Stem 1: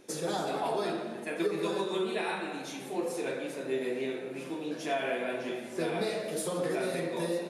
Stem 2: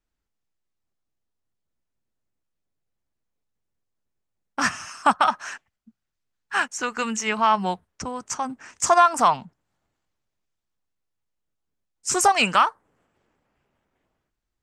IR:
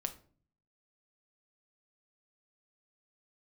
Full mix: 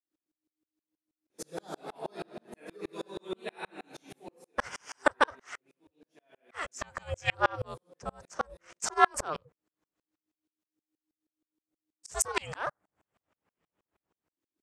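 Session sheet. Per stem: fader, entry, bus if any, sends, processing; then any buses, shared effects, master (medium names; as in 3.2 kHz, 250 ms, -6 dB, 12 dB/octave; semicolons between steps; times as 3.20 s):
0.0 dB, 1.30 s, no send, auto duck -20 dB, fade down 0.40 s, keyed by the second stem
+3.0 dB, 0.00 s, no send, ring modulator 310 Hz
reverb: none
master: high-pass 53 Hz; sawtooth tremolo in dB swelling 6.3 Hz, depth 38 dB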